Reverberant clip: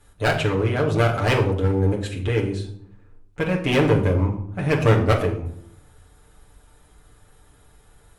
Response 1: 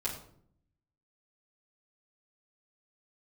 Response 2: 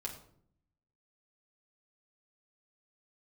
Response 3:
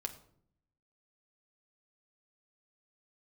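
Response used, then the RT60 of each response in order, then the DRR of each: 2; 0.65, 0.65, 0.65 s; -9.0, -2.5, 4.5 dB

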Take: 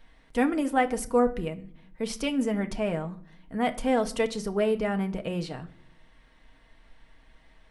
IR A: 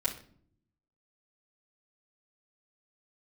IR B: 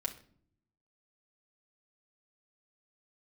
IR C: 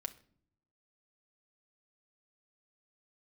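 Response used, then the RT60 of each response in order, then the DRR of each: C; 0.55, 0.55, 0.55 s; -7.5, -0.5, 5.0 dB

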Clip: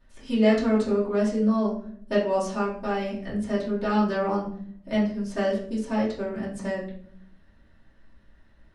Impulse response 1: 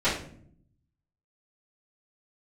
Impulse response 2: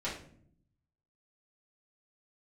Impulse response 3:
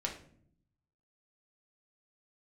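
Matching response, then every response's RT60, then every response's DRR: 2; 0.60, 0.60, 0.60 s; -16.0, -9.5, -1.0 dB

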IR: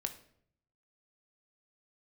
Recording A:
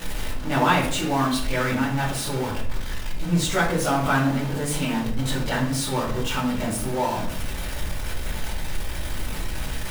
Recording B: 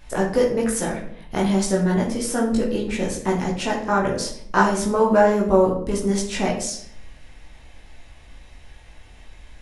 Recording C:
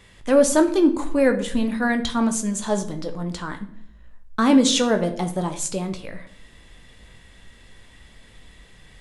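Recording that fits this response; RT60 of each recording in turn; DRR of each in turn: C; 0.65, 0.65, 0.65 s; -9.5, -3.5, 6.5 dB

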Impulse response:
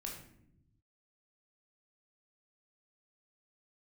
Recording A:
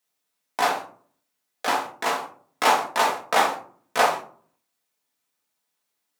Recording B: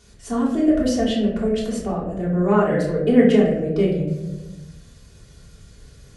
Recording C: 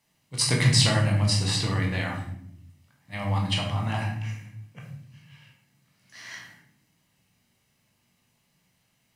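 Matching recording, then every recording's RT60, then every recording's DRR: C; 0.45 s, 1.2 s, not exponential; -2.5, -8.0, -1.0 dB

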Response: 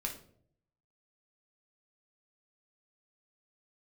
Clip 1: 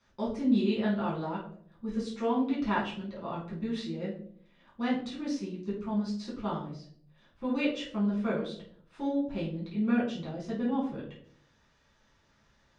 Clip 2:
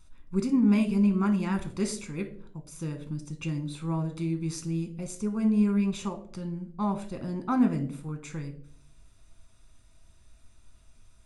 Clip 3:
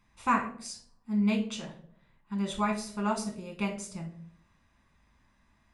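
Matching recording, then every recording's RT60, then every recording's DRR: 3; 0.60, 0.60, 0.60 s; -7.5, 5.5, 1.0 dB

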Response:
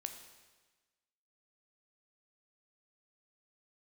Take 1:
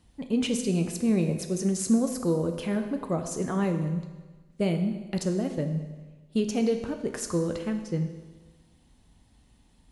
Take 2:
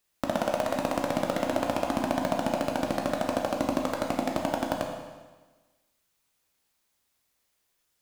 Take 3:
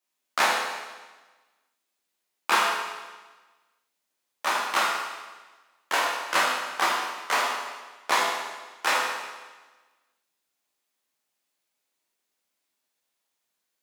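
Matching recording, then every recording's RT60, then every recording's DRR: 1; 1.3, 1.3, 1.3 s; 6.0, 0.5, -5.0 dB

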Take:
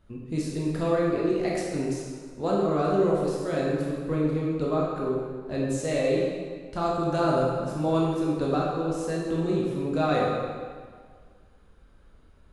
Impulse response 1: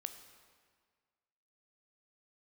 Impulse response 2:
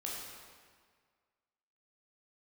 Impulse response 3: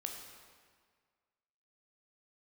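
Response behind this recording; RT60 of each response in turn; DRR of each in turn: 2; 1.7, 1.8, 1.7 s; 8.0, -4.5, 2.0 dB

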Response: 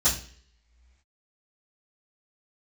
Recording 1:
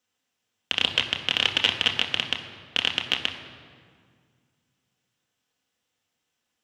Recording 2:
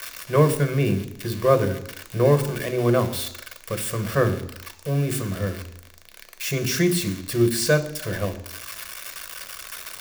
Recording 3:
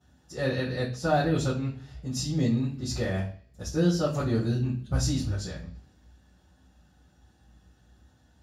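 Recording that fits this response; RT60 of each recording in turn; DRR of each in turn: 3; 2.0 s, 0.80 s, not exponential; 2.0, 7.5, -13.5 dB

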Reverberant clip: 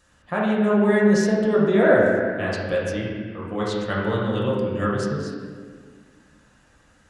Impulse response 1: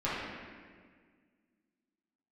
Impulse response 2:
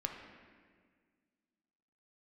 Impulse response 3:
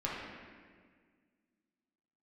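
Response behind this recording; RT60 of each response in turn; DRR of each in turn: 3; 1.7, 1.7, 1.7 s; -11.0, 2.0, -6.5 dB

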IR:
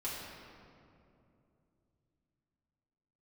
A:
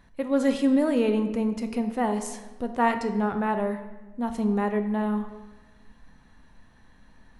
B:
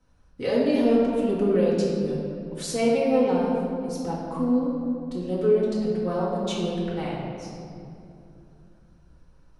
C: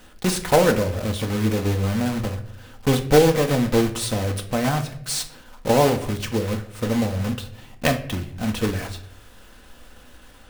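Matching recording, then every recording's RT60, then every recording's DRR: B; 1.3, 2.7, 0.70 s; 6.5, -8.0, 5.0 dB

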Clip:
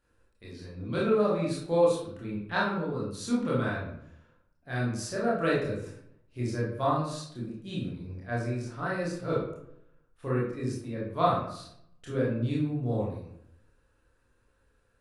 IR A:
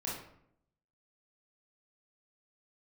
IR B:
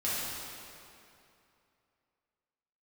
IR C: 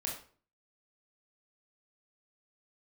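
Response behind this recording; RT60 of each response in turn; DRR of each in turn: A; 0.70, 2.7, 0.45 s; -6.5, -10.0, -2.0 dB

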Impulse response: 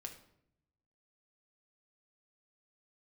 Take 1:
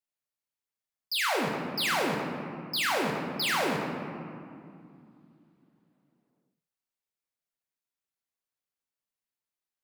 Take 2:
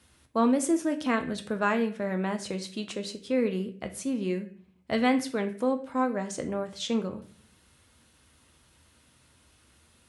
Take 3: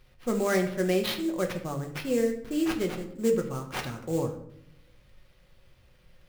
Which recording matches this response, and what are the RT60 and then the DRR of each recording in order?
3; 2.4, 0.45, 0.70 s; -1.5, 6.0, 2.5 dB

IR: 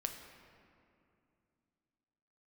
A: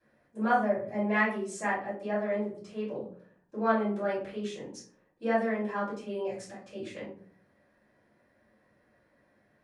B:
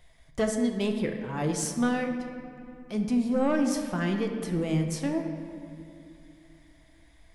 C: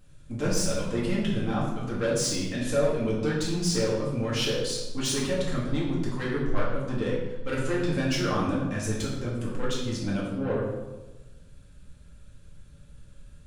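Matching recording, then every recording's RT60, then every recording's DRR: B; 0.50, 2.6, 1.2 s; -11.5, 4.0, -6.0 dB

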